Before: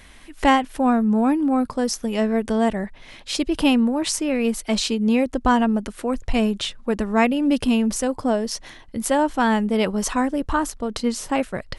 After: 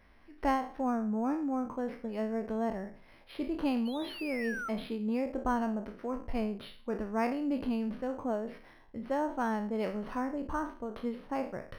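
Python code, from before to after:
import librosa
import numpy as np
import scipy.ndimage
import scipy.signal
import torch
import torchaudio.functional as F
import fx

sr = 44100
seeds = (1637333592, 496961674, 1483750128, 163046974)

y = fx.spec_trails(x, sr, decay_s=0.42)
y = fx.low_shelf(y, sr, hz=270.0, db=-6.5)
y = fx.spec_paint(y, sr, seeds[0], shape='fall', start_s=3.85, length_s=0.84, low_hz=1300.0, high_hz=4500.0, level_db=-23.0)
y = fx.spacing_loss(y, sr, db_at_10k=33)
y = np.interp(np.arange(len(y)), np.arange(len(y))[::6], y[::6])
y = F.gain(torch.from_numpy(y), -9.0).numpy()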